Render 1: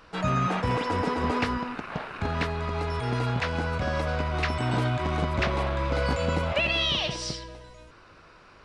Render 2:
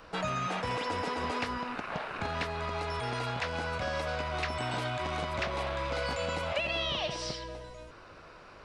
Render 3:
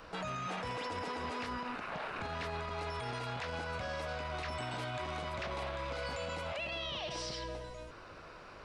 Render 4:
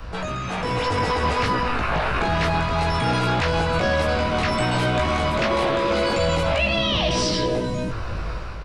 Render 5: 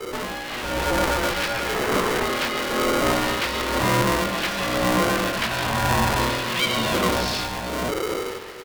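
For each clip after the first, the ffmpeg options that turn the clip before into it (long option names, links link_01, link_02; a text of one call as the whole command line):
ffmpeg -i in.wav -filter_complex "[0:a]equalizer=frequency=600:width_type=o:width=1:gain=4.5,acrossover=split=650|2100|4500[link_01][link_02][link_03][link_04];[link_01]acompressor=threshold=-38dB:ratio=4[link_05];[link_02]acompressor=threshold=-36dB:ratio=4[link_06];[link_03]acompressor=threshold=-39dB:ratio=4[link_07];[link_04]acompressor=threshold=-47dB:ratio=4[link_08];[link_05][link_06][link_07][link_08]amix=inputs=4:normalize=0" out.wav
ffmpeg -i in.wav -af "alimiter=level_in=7dB:limit=-24dB:level=0:latency=1:release=37,volume=-7dB" out.wav
ffmpeg -i in.wav -filter_complex "[0:a]asplit=2[link_01][link_02];[link_02]adelay=18,volume=-3dB[link_03];[link_01][link_03]amix=inputs=2:normalize=0,acrossover=split=100|890[link_04][link_05][link_06];[link_04]aeval=exprs='0.0119*sin(PI/2*7.08*val(0)/0.0119)':channel_layout=same[link_07];[link_07][link_05][link_06]amix=inputs=3:normalize=0,dynaudnorm=framelen=490:gausssize=3:maxgain=7dB,volume=8dB" out.wav
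ffmpeg -i in.wav -filter_complex "[0:a]acrossover=split=1300[link_01][link_02];[link_01]aeval=exprs='val(0)*(1-0.7/2+0.7/2*cos(2*PI*1*n/s))':channel_layout=same[link_03];[link_02]aeval=exprs='val(0)*(1-0.7/2-0.7/2*cos(2*PI*1*n/s))':channel_layout=same[link_04];[link_03][link_04]amix=inputs=2:normalize=0,aresample=11025,aresample=44100,aeval=exprs='val(0)*sgn(sin(2*PI*430*n/s))':channel_layout=same,volume=2dB" out.wav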